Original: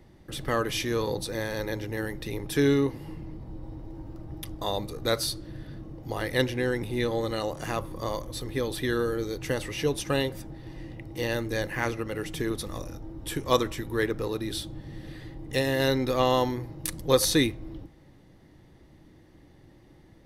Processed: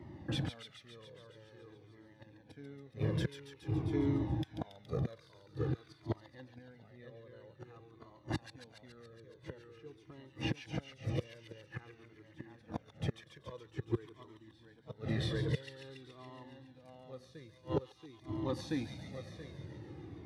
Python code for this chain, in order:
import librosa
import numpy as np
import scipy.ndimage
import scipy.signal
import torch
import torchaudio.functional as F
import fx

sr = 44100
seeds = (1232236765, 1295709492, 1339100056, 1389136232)

p1 = x + fx.echo_feedback(x, sr, ms=680, feedback_pct=22, wet_db=-4.5, dry=0)
p2 = 10.0 ** (-8.0 / 20.0) * np.tanh(p1 / 10.0 ** (-8.0 / 20.0))
p3 = fx.gate_flip(p2, sr, shuts_db=-23.0, range_db=-32)
p4 = fx.low_shelf(p3, sr, hz=440.0, db=3.5)
p5 = fx.echo_wet_highpass(p4, sr, ms=140, feedback_pct=71, hz=2000.0, wet_db=-7.0)
p6 = fx.fold_sine(p5, sr, drive_db=7, ceiling_db=-18.0)
p7 = p5 + (p6 * librosa.db_to_amplitude(-9.5))
p8 = scipy.signal.sosfilt(scipy.signal.butter(4, 91.0, 'highpass', fs=sr, output='sos'), p7)
p9 = fx.spacing_loss(p8, sr, db_at_10k=22)
p10 = fx.comb_cascade(p9, sr, direction='falling', hz=0.49)
y = p10 * librosa.db_to_amplitude(2.0)